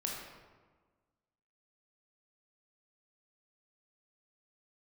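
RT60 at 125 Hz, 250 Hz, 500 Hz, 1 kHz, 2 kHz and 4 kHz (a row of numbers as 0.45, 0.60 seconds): 1.6, 1.6, 1.4, 1.4, 1.1, 0.80 seconds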